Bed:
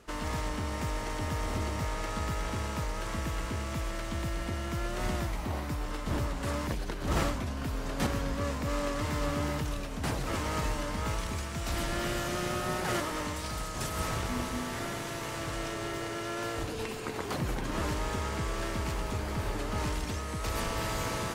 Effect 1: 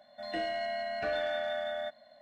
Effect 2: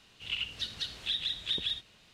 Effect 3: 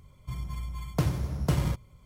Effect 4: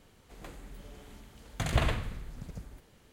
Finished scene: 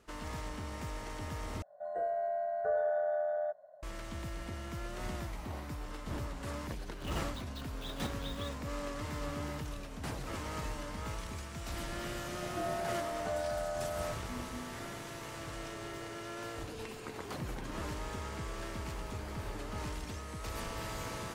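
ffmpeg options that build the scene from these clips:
-filter_complex "[1:a]asplit=2[a][b];[0:a]volume=-7.5dB[c];[a]firequalizer=gain_entry='entry(180,0);entry(270,-29);entry(400,15);entry(1000,3);entry(1500,2);entry(2400,-28);entry(4900,-27);entry(7100,-6)':delay=0.05:min_phase=1[d];[2:a]acrusher=bits=7:dc=4:mix=0:aa=0.000001[e];[b]lowpass=f=1.3k:w=0.5412,lowpass=f=1.3k:w=1.3066[f];[c]asplit=2[g][h];[g]atrim=end=1.624[i];[d]atrim=end=2.21,asetpts=PTS-STARTPTS,volume=-8.5dB[j];[h]atrim=start=3.826[k];[e]atrim=end=2.13,asetpts=PTS-STARTPTS,volume=-16dB,afade=t=in:d=0.004:c=hsin,afade=t=out:st=2.126:d=0.004:c=hsin,adelay=6750[l];[f]atrim=end=2.21,asetpts=PTS-STARTPTS,volume=-3dB,afade=t=in:d=0.004:c=hsin,afade=t=out:st=2.206:d=0.004:c=hsin,adelay=12230[m];[i][j]acrossfade=d=0.004:c1=hsin:c2=hsin[n];[n][k]acrossfade=d=0.004:c1=hsin:c2=hsin[o];[o][l][m]amix=inputs=3:normalize=0"

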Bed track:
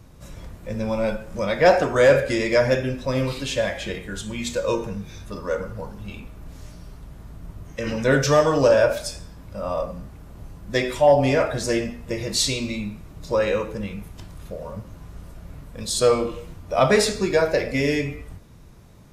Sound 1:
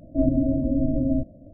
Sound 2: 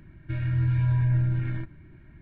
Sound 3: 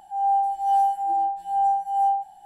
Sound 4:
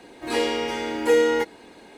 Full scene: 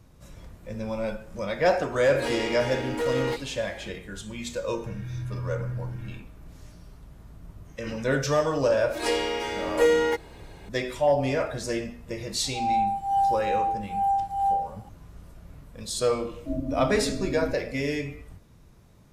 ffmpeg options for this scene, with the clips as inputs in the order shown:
-filter_complex "[4:a]asplit=2[a][b];[0:a]volume=-6.5dB[c];[a]asoftclip=type=tanh:threshold=-20dB[d];[b]highpass=f=290:w=0.5412,highpass=f=290:w=1.3066[e];[d]atrim=end=1.97,asetpts=PTS-STARTPTS,volume=-3.5dB,afade=t=in:d=0.004:c=hsin,afade=t=out:st=1.966:d=0.004:c=hsin,adelay=1920[f];[2:a]atrim=end=2.21,asetpts=PTS-STARTPTS,volume=-9.5dB,afade=t=in:d=0.004:c=hsin,afade=t=out:st=2.206:d=0.004:c=hsin,adelay=201537S[g];[e]atrim=end=1.97,asetpts=PTS-STARTPTS,volume=-2dB,afade=t=in:d=0.004:c=hsin,afade=t=out:st=1.966:d=0.004:c=hsin,adelay=8720[h];[3:a]atrim=end=2.45,asetpts=PTS-STARTPTS,volume=-3dB,afade=t=in:d=0.004:c=hsin,afade=t=out:st=2.446:d=0.004:c=hsin,adelay=12440[i];[1:a]atrim=end=1.53,asetpts=PTS-STARTPTS,volume=-9.5dB,afade=t=in:d=0.004:c=hsin,afade=t=out:st=1.526:d=0.004:c=hsin,adelay=16310[j];[c][f][g][h][i][j]amix=inputs=6:normalize=0"

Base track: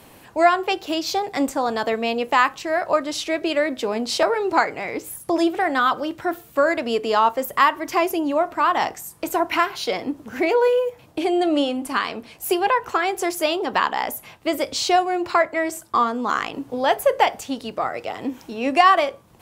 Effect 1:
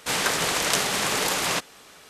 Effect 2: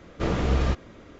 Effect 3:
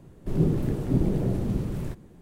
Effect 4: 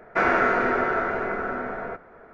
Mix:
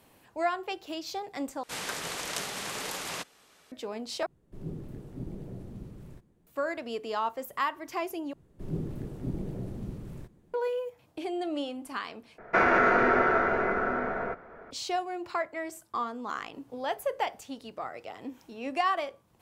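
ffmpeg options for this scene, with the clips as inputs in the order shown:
-filter_complex "[3:a]asplit=2[a][b];[0:a]volume=-13dB[c];[4:a]alimiter=limit=-13dB:level=0:latency=1:release=27[d];[c]asplit=5[e][f][g][h][i];[e]atrim=end=1.634[j];[1:a]atrim=end=2.09,asetpts=PTS-STARTPTS,volume=-11.5dB[k];[f]atrim=start=3.716:end=4.264[l];[a]atrim=end=2.21,asetpts=PTS-STARTPTS,volume=-16dB[m];[g]atrim=start=6.466:end=8.334[n];[b]atrim=end=2.21,asetpts=PTS-STARTPTS,volume=-11dB[o];[h]atrim=start=10.536:end=12.384[p];[d]atrim=end=2.33[q];[i]atrim=start=14.706[r];[j][k]acrossfade=d=0.004:c1=hsin:c2=hsin[s];[s][l]acrossfade=d=0.004:c1=hsin:c2=hsin[t];[t][m]acrossfade=d=0.004:c1=hsin:c2=hsin[u];[u][n]acrossfade=d=0.004:c1=hsin:c2=hsin[v];[v][o]acrossfade=d=0.004:c1=hsin:c2=hsin[w];[w][p]acrossfade=d=0.004:c1=hsin:c2=hsin[x];[x][q]acrossfade=d=0.004:c1=hsin:c2=hsin[y];[y][r]acrossfade=d=0.004:c1=hsin:c2=hsin"

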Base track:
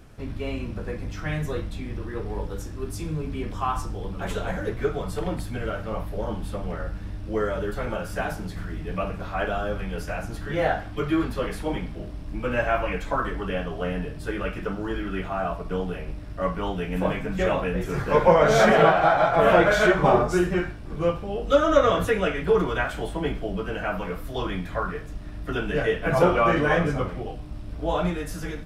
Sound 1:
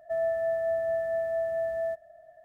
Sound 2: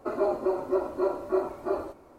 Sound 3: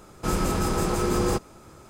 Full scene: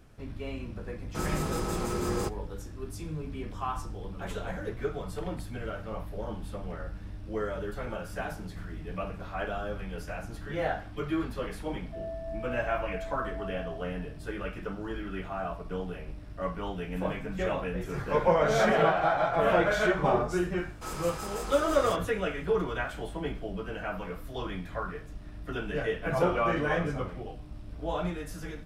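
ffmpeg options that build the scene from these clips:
-filter_complex "[3:a]asplit=2[a][b];[0:a]volume=-7dB[c];[a]agate=range=-33dB:threshold=-38dB:ratio=3:release=100:detection=peak[d];[1:a]lowpass=1.2k[e];[b]highpass=610[f];[d]atrim=end=1.89,asetpts=PTS-STARTPTS,volume=-7dB,afade=t=in:d=0.004:c=hsin,afade=t=out:st=1.886:d=0.004:c=hsin,adelay=910[g];[e]atrim=end=2.44,asetpts=PTS-STARTPTS,volume=-10.5dB,afade=t=in:d=0.004:c=hsin,afade=t=out:st=2.436:d=0.004:c=hsin,adelay=11830[h];[f]atrim=end=1.89,asetpts=PTS-STARTPTS,volume=-8.5dB,afade=t=in:d=0.004:c=hsin,afade=t=out:st=1.886:d=0.004:c=hsin,adelay=20580[i];[c][g][h][i]amix=inputs=4:normalize=0"

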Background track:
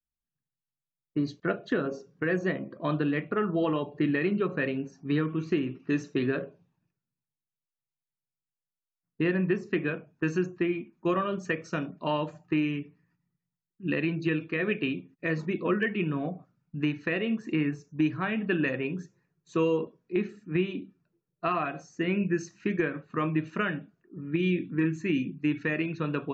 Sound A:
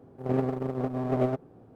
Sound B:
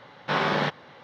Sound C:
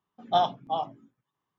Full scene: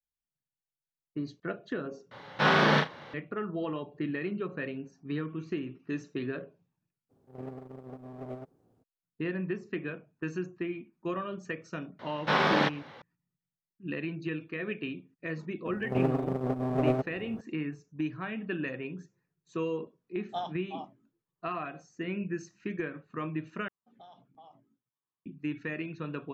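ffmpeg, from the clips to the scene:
-filter_complex "[2:a]asplit=2[a][b];[1:a]asplit=2[c][d];[3:a]asplit=2[e][f];[0:a]volume=-7dB[g];[a]aecho=1:1:34|72:0.708|0.168[h];[c]acrusher=bits=11:mix=0:aa=0.000001[i];[d]acompressor=mode=upward:threshold=-36dB:ratio=2.5:attack=3.2:release=140:knee=2.83:detection=peak[j];[f]acompressor=threshold=-34dB:ratio=6:attack=3.2:release=140:knee=1:detection=peak[k];[g]asplit=3[l][m][n];[l]atrim=end=2.114[o];[h]atrim=end=1.03[p];[m]atrim=start=3.136:end=23.684[q];[k]atrim=end=1.58,asetpts=PTS-STARTPTS,volume=-16.5dB[r];[n]atrim=start=25.256[s];[i]atrim=end=1.75,asetpts=PTS-STARTPTS,volume=-15dB,afade=t=in:d=0.02,afade=t=out:st=1.73:d=0.02,adelay=7090[t];[b]atrim=end=1.03,asetpts=PTS-STARTPTS,volume=-0.5dB,afade=t=in:d=0.004:c=hsin,afade=t=out:st=1.026:d=0.004:c=hsin,adelay=11990[u];[j]atrim=end=1.75,asetpts=PTS-STARTPTS,volume=-0.5dB,afade=t=in:d=0.004:c=hsin,afade=t=out:st=1.746:d=0.004:c=hsin,adelay=15660[v];[e]atrim=end=1.58,asetpts=PTS-STARTPTS,volume=-12.5dB,afade=t=in:d=0.004:c=hsin,afade=t=out:st=1.576:d=0.004:c=hsin,adelay=20010[w];[o][p]acrossfade=d=0.004:c1=hsin:c2=hsin[x];[x][q]acrossfade=d=0.004:c1=hsin:c2=hsin[y];[y][r]acrossfade=d=0.004:c1=hsin:c2=hsin[z];[z][s]acrossfade=d=0.004:c1=hsin:c2=hsin[aa];[aa][t][u][v][w]amix=inputs=5:normalize=0"

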